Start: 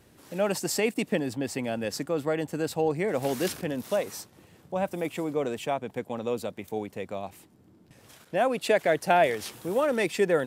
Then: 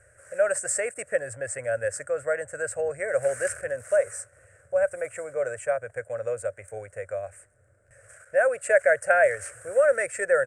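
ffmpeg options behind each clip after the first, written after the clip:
-af "firequalizer=gain_entry='entry(110,0);entry(170,-24);entry(300,-25);entry(560,8);entry(880,-19);entry(1500,10);entry(3500,-28);entry(8400,10);entry(13000,-25)':delay=0.05:min_phase=1,volume=1.19"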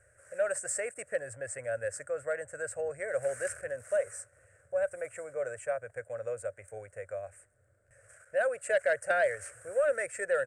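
-af "asoftclip=type=tanh:threshold=0.282,volume=0.473"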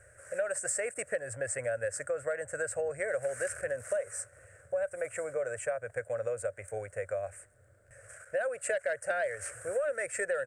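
-af "acompressor=threshold=0.0158:ratio=6,volume=2.11"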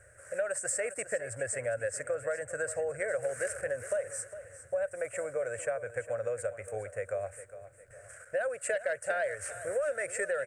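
-af "aecho=1:1:407|814|1221|1628:0.211|0.0824|0.0321|0.0125"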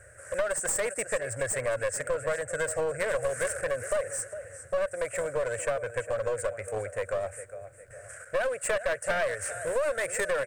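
-af "aeval=exprs='clip(val(0),-1,0.02)':c=same,volume=1.88"

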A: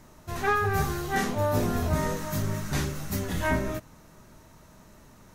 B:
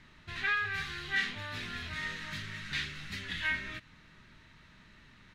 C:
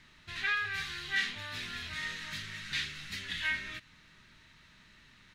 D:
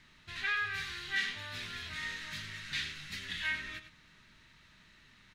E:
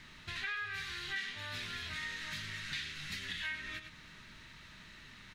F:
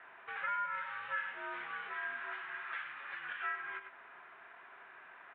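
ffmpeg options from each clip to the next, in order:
-filter_complex "[0:a]firequalizer=gain_entry='entry(170,0);entry(610,-9);entry(1800,11);entry(3800,10);entry(5900,-7);entry(9900,-13);entry(14000,-25)':delay=0.05:min_phase=1,acrossover=split=1500[s0][s1];[s0]acompressor=threshold=0.0141:ratio=6[s2];[s2][s1]amix=inputs=2:normalize=0,volume=0.501"
-af "highshelf=f=2100:g=9,volume=0.596"
-filter_complex "[0:a]asplit=2[s0][s1];[s1]adelay=99.13,volume=0.316,highshelf=f=4000:g=-2.23[s2];[s0][s2]amix=inputs=2:normalize=0,volume=0.794"
-af "acompressor=threshold=0.00398:ratio=3,volume=2.24"
-filter_complex "[0:a]acrossover=split=470 2100:gain=0.224 1 0.0631[s0][s1][s2];[s0][s1][s2]amix=inputs=3:normalize=0,highpass=f=530:t=q:w=0.5412,highpass=f=530:t=q:w=1.307,lowpass=f=3300:t=q:w=0.5176,lowpass=f=3300:t=q:w=0.7071,lowpass=f=3300:t=q:w=1.932,afreqshift=-240,volume=2"

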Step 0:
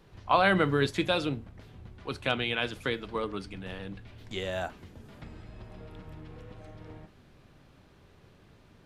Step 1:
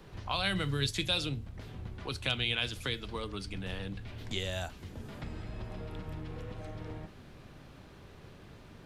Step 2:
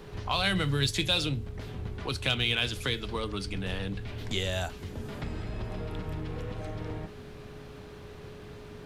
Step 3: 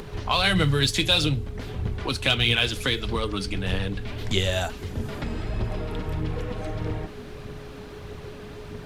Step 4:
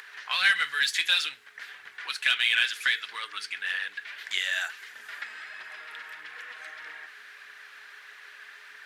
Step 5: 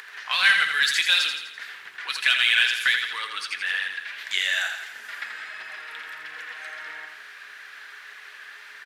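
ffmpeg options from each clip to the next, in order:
-filter_complex "[0:a]acrossover=split=120|3000[s0][s1][s2];[s1]acompressor=threshold=0.00447:ratio=3[s3];[s0][s3][s2]amix=inputs=3:normalize=0,volume=1.88"
-filter_complex "[0:a]aeval=exprs='val(0)+0.002*sin(2*PI*420*n/s)':c=same,asplit=2[s0][s1];[s1]asoftclip=type=tanh:threshold=0.0211,volume=0.473[s2];[s0][s2]amix=inputs=2:normalize=0,volume=1.33"
-af "acompressor=mode=upward:threshold=0.00501:ratio=2.5,aphaser=in_gain=1:out_gain=1:delay=4.8:decay=0.35:speed=1.6:type=triangular,volume=1.88"
-filter_complex "[0:a]highpass=f=1700:t=q:w=4.4,asplit=2[s0][s1];[s1]asoftclip=type=tanh:threshold=0.224,volume=0.668[s2];[s0][s2]amix=inputs=2:normalize=0,volume=0.355"
-af "aecho=1:1:84|168|252|336|420|504:0.473|0.241|0.123|0.0628|0.032|0.0163,volume=1.5"

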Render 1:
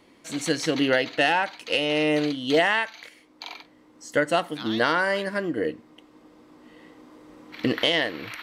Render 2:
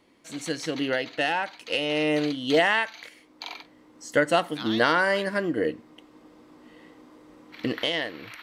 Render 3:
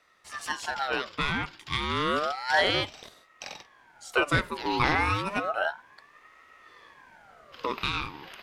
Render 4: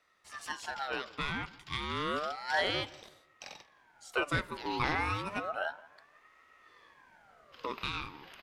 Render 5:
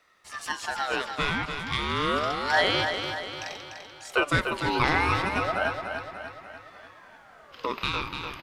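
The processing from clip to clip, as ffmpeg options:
-af "dynaudnorm=f=300:g=13:m=3.76,volume=0.531"
-af "aeval=exprs='val(0)*sin(2*PI*1100*n/s+1100*0.45/0.31*sin(2*PI*0.31*n/s))':c=same"
-filter_complex "[0:a]asplit=2[s0][s1];[s1]adelay=169,lowpass=f=2300:p=1,volume=0.1,asplit=2[s2][s3];[s3]adelay=169,lowpass=f=2300:p=1,volume=0.39,asplit=2[s4][s5];[s5]adelay=169,lowpass=f=2300:p=1,volume=0.39[s6];[s0][s2][s4][s6]amix=inputs=4:normalize=0,volume=0.447"
-af "aecho=1:1:295|590|885|1180|1475|1770:0.447|0.237|0.125|0.0665|0.0352|0.0187,volume=2.37"

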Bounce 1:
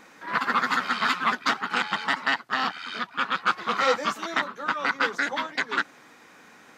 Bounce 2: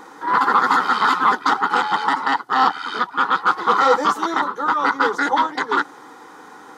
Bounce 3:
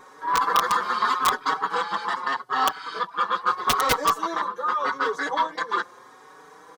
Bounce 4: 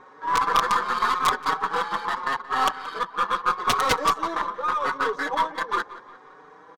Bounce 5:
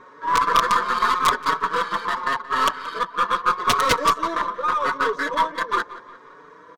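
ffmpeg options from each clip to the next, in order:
-af "equalizer=f=9500:w=3.2:g=4,alimiter=limit=0.15:level=0:latency=1:release=15,superequalizer=6b=2.51:7b=2.51:9b=3.55:10b=2.24:12b=0.447,volume=1.68"
-filter_complex "[0:a]aecho=1:1:1.8:0.56,aeval=exprs='(mod(1.68*val(0)+1,2)-1)/1.68':c=same,asplit=2[s0][s1];[s1]adelay=5,afreqshift=0.81[s2];[s0][s2]amix=inputs=2:normalize=1,volume=0.668"
-filter_complex "[0:a]adynamicsmooth=sensitivity=6:basefreq=2900,aeval=exprs='0.596*(cos(1*acos(clip(val(0)/0.596,-1,1)))-cos(1*PI/2))+0.0211*(cos(4*acos(clip(val(0)/0.596,-1,1)))-cos(4*PI/2))+0.0335*(cos(6*acos(clip(val(0)/0.596,-1,1)))-cos(6*PI/2))':c=same,asplit=2[s0][s1];[s1]adelay=177,lowpass=f=4300:p=1,volume=0.141,asplit=2[s2][s3];[s3]adelay=177,lowpass=f=4300:p=1,volume=0.51,asplit=2[s4][s5];[s5]adelay=177,lowpass=f=4300:p=1,volume=0.51,asplit=2[s6][s7];[s7]adelay=177,lowpass=f=4300:p=1,volume=0.51[s8];[s0][s2][s4][s6][s8]amix=inputs=5:normalize=0"
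-af "asuperstop=centerf=800:order=12:qfactor=5.8,volume=1.41"

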